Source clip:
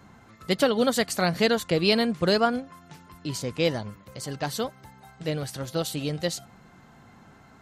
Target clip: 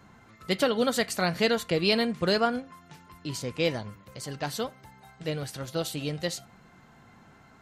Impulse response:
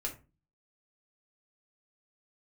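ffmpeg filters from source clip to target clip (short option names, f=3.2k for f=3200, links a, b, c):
-filter_complex "[0:a]asplit=2[a][b];[b]equalizer=f=2.3k:t=o:w=2.9:g=14.5[c];[1:a]atrim=start_sample=2205[d];[c][d]afir=irnorm=-1:irlink=0,volume=-21dB[e];[a][e]amix=inputs=2:normalize=0,volume=-3.5dB"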